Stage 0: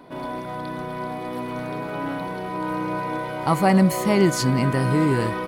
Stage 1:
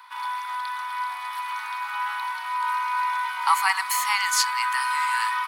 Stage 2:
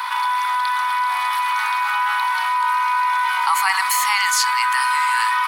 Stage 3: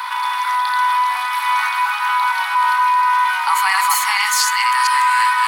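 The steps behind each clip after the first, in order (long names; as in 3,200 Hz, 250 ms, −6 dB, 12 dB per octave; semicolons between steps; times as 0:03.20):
Butterworth high-pass 870 Hz 96 dB per octave; level +5.5 dB
envelope flattener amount 70%
delay that plays each chunk backwards 232 ms, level −1.5 dB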